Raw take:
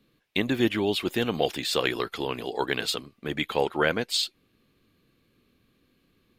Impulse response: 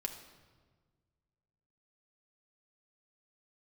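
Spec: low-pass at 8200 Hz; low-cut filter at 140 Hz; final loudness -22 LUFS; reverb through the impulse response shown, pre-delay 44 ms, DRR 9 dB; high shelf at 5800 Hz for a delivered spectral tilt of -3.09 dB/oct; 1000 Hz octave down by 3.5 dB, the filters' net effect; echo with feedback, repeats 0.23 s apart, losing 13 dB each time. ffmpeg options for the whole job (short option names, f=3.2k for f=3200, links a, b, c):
-filter_complex "[0:a]highpass=140,lowpass=8.2k,equalizer=f=1k:t=o:g=-5,highshelf=f=5.8k:g=7.5,aecho=1:1:230|460|690:0.224|0.0493|0.0108,asplit=2[a][b];[1:a]atrim=start_sample=2205,adelay=44[c];[b][c]afir=irnorm=-1:irlink=0,volume=-9dB[d];[a][d]amix=inputs=2:normalize=0,volume=4.5dB"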